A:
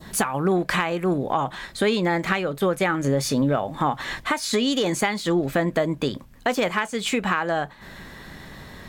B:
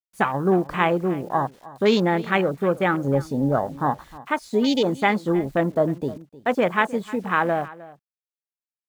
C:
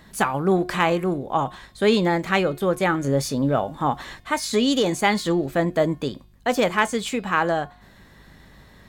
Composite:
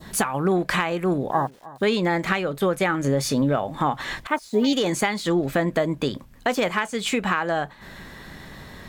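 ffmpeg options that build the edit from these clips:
-filter_complex "[1:a]asplit=2[s0][s1];[0:a]asplit=3[s2][s3][s4];[s2]atrim=end=1.312[s5];[s0]atrim=start=1.308:end=1.832[s6];[s3]atrim=start=1.828:end=4.272[s7];[s1]atrim=start=4.268:end=4.732[s8];[s4]atrim=start=4.728[s9];[s5][s6]acrossfade=d=0.004:c1=hsin:c2=hsin[s10];[s10][s7]acrossfade=d=0.004:c1=hsin:c2=hsin[s11];[s11][s8]acrossfade=d=0.004:c1=hsin:c2=hsin[s12];[s12][s9]acrossfade=d=0.004:c1=hsin:c2=hsin"

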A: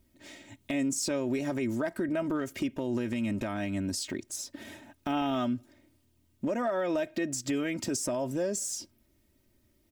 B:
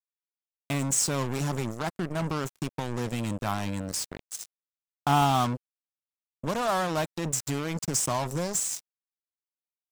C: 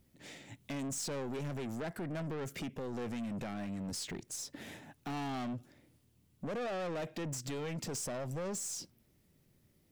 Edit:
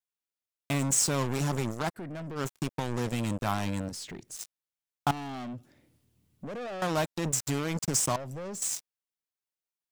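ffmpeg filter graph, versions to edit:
-filter_complex "[2:a]asplit=4[s0][s1][s2][s3];[1:a]asplit=5[s4][s5][s6][s7][s8];[s4]atrim=end=2[s9];[s0]atrim=start=1.94:end=2.41[s10];[s5]atrim=start=2.35:end=3.892[s11];[s1]atrim=start=3.888:end=4.362[s12];[s6]atrim=start=4.358:end=5.112[s13];[s2]atrim=start=5.108:end=6.822[s14];[s7]atrim=start=6.818:end=8.162[s15];[s3]atrim=start=8.158:end=8.622[s16];[s8]atrim=start=8.618[s17];[s9][s10]acrossfade=d=0.06:c1=tri:c2=tri[s18];[s18][s11]acrossfade=d=0.06:c1=tri:c2=tri[s19];[s19][s12]acrossfade=d=0.004:c1=hsin:c2=hsin[s20];[s20][s13]acrossfade=d=0.004:c1=hsin:c2=hsin[s21];[s21][s14]acrossfade=d=0.004:c1=hsin:c2=hsin[s22];[s22][s15]acrossfade=d=0.004:c1=hsin:c2=hsin[s23];[s23][s16]acrossfade=d=0.004:c1=hsin:c2=hsin[s24];[s24][s17]acrossfade=d=0.004:c1=hsin:c2=hsin"

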